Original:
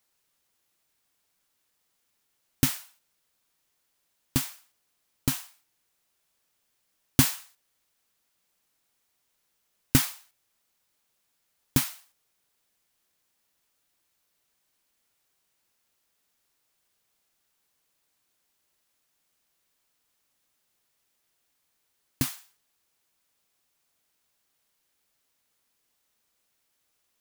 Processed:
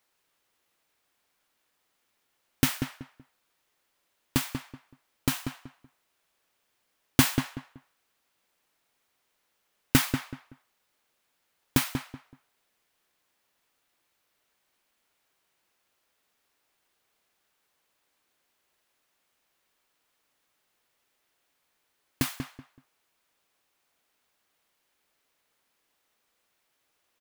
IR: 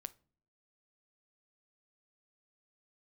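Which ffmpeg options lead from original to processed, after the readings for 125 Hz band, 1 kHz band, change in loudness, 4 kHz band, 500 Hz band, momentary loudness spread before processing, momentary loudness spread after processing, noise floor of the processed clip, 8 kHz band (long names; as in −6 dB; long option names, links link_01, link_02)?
−0.5 dB, +4.5 dB, −1.0 dB, +1.0 dB, +4.0 dB, 13 LU, 17 LU, −76 dBFS, −2.5 dB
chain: -filter_complex "[0:a]bass=frequency=250:gain=-6,treble=frequency=4000:gain=-7,asplit=2[link_01][link_02];[link_02]adelay=189,lowpass=frequency=2100:poles=1,volume=-7dB,asplit=2[link_03][link_04];[link_04]adelay=189,lowpass=frequency=2100:poles=1,volume=0.26,asplit=2[link_05][link_06];[link_06]adelay=189,lowpass=frequency=2100:poles=1,volume=0.26[link_07];[link_01][link_03][link_05][link_07]amix=inputs=4:normalize=0,volume=4dB"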